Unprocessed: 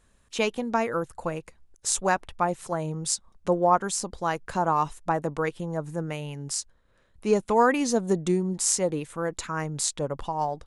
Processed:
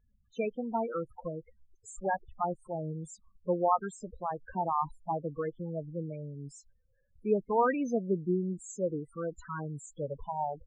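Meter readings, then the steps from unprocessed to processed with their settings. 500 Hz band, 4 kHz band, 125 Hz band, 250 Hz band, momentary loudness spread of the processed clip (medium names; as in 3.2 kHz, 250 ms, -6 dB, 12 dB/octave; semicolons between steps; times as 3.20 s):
-6.0 dB, under -25 dB, -6.0 dB, -6.0 dB, 13 LU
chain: loudest bins only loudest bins 8; resonant high shelf 2.4 kHz -6 dB, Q 1.5; trim -5.5 dB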